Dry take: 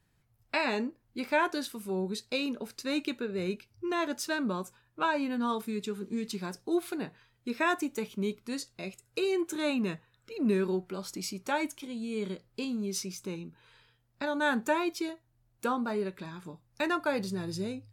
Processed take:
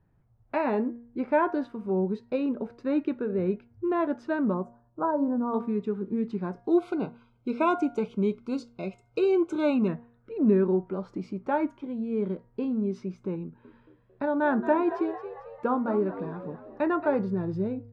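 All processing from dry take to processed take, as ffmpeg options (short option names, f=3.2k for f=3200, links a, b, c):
-filter_complex "[0:a]asettb=1/sr,asplit=3[a][b][c];[a]atrim=end=4.544[d];[b]atrim=start=4.54:end=5.54,asetpts=PTS-STARTPTS,afade=t=in:d=0.004:c=qsin,afade=t=out:st=0.996:d=0.004:c=qsin,asuperstop=centerf=2700:order=4:qfactor=0.56,bandreject=f=145.7:t=h:w=4,bandreject=f=291.4:t=h:w=4,bandreject=f=437.1:t=h:w=4,bandreject=f=582.8:t=h:w=4[e];[c]atrim=start=5.536[f];[d][e]acrossfade=d=0.004:c1=hsin:c2=qsin[g];[g][f]acrossfade=d=0.004:c1=qsin:c2=hsin,asettb=1/sr,asplit=3[h][i][j];[h]atrim=end=6.644[k];[i]atrim=start=6.64:end=9.88,asetpts=PTS-STARTPTS,afade=t=in:d=0.004:c=qsin,afade=t=out:st=3.236:d=0.004:c=qsin,asuperstop=centerf=1800:order=20:qfactor=3.7,equalizer=f=7.7k:t=o:w=2.8:g=14.5[l];[j]atrim=start=9.876[m];[k][l]acrossfade=d=0.004:c1=hsin:c2=qsin[n];[n][m]acrossfade=d=0.004:c1=qsin:c2=hsin,asettb=1/sr,asplit=3[o][p][q];[o]atrim=end=13.424[r];[p]atrim=start=13.42:end=17.15,asetpts=PTS-STARTPTS,afade=t=in:d=0.004:c=qsin,afade=t=out:st=3.726:d=0.004:c=qsin,highshelf=f=8.2k:g=2.5,asplit=7[s][t][u][v][w][x][y];[t]adelay=224,afreqshift=69,volume=-12dB[z];[u]adelay=448,afreqshift=138,volume=-17.5dB[aa];[v]adelay=672,afreqshift=207,volume=-23dB[ab];[w]adelay=896,afreqshift=276,volume=-28.5dB[ac];[x]adelay=1120,afreqshift=345,volume=-34.1dB[ad];[y]adelay=1344,afreqshift=414,volume=-39.6dB[ae];[s][z][aa][ab][ac][ad][ae]amix=inputs=7:normalize=0,atrim=end_sample=164493[af];[q]atrim=start=17.146[ag];[r][af]acrossfade=d=0.004:c1=hsin:c2=qsin[ah];[ah][ag]acrossfade=d=0.004:c1=qsin:c2=hsin,lowpass=1k,bandreject=f=236.3:t=h:w=4,bandreject=f=472.6:t=h:w=4,bandreject=f=708.9:t=h:w=4,bandreject=f=945.2:t=h:w=4,bandreject=f=1.1815k:t=h:w=4,bandreject=f=1.4178k:t=h:w=4,bandreject=f=1.6541k:t=h:w=4,bandreject=f=1.8904k:t=h:w=4,bandreject=f=2.1267k:t=h:w=4,volume=6dB"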